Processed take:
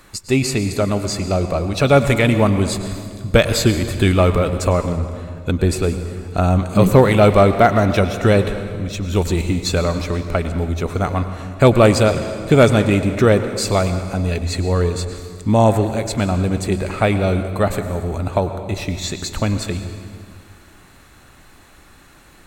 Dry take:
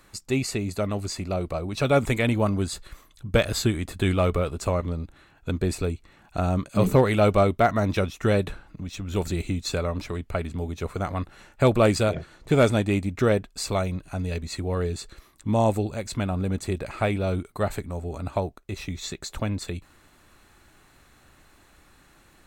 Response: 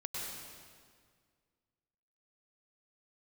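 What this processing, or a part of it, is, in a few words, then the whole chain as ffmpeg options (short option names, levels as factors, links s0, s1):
saturated reverb return: -filter_complex "[0:a]asplit=2[s0][s1];[1:a]atrim=start_sample=2205[s2];[s1][s2]afir=irnorm=-1:irlink=0,asoftclip=type=tanh:threshold=0.133,volume=0.501[s3];[s0][s3]amix=inputs=2:normalize=0,volume=2"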